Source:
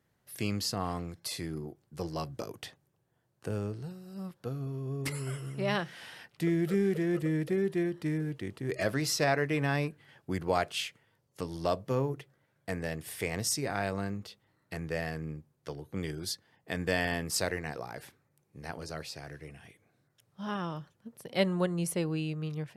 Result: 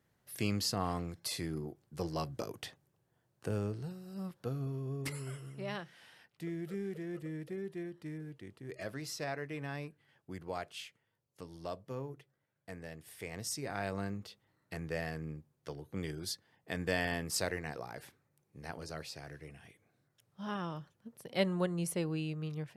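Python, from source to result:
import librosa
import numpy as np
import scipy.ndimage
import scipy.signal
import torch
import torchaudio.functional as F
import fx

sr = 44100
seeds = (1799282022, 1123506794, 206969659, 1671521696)

y = fx.gain(x, sr, db=fx.line((4.66, -1.0), (5.91, -11.5), (13.1, -11.5), (14.01, -3.5)))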